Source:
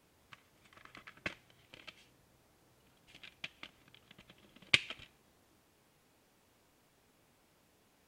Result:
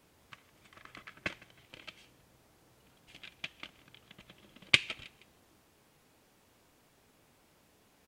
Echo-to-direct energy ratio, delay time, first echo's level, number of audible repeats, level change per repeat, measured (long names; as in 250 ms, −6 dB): −21.0 dB, 158 ms, −21.5 dB, 2, −9.0 dB